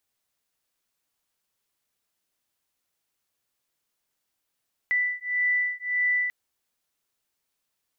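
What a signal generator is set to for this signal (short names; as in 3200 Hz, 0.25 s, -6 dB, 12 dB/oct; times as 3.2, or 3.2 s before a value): beating tones 1980 Hz, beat 1.7 Hz, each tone -26 dBFS 1.39 s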